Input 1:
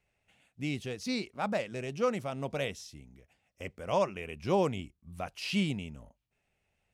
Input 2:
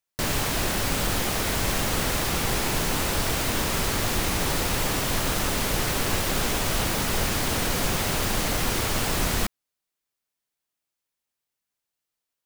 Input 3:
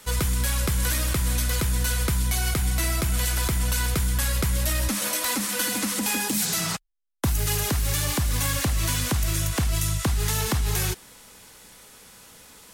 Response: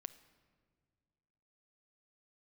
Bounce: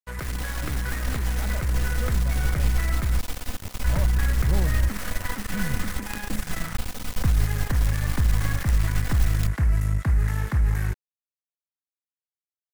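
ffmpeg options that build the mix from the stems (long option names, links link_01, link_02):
-filter_complex "[0:a]aemphasis=mode=reproduction:type=bsi,volume=-8dB[link_01];[1:a]aecho=1:1:4:0.71,acrusher=bits=3:dc=4:mix=0:aa=0.000001,volume=-9dB[link_02];[2:a]highshelf=frequency=2500:width_type=q:width=3:gain=-10,volume=-5.5dB,asplit=3[link_03][link_04][link_05];[link_03]atrim=end=3.19,asetpts=PTS-STARTPTS,afade=type=out:start_time=3.186:duration=0.004:curve=hsin[link_06];[link_04]atrim=start=3.19:end=3.84,asetpts=PTS-STARTPTS,volume=0[link_07];[link_05]atrim=start=3.84,asetpts=PTS-STARTPTS,afade=type=in:duration=0.004:curve=hsin[link_08];[link_06][link_07][link_08]concat=n=3:v=0:a=1[link_09];[link_01][link_02][link_09]amix=inputs=3:normalize=0,asubboost=boost=3.5:cutoff=170,aeval=exprs='sgn(val(0))*max(abs(val(0))-0.0178,0)':channel_layout=same"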